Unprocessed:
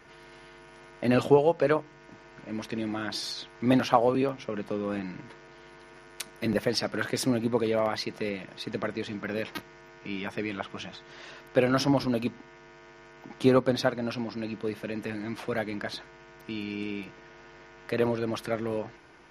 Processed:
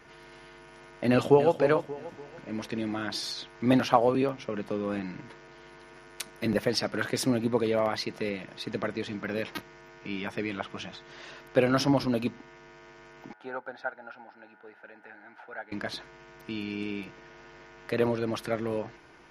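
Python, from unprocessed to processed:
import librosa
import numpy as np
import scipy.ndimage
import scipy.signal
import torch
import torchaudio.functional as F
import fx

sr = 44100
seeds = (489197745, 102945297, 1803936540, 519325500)

y = fx.echo_throw(x, sr, start_s=1.1, length_s=0.42, ms=290, feedback_pct=40, wet_db=-10.5)
y = fx.double_bandpass(y, sr, hz=1100.0, octaves=0.76, at=(13.33, 15.72))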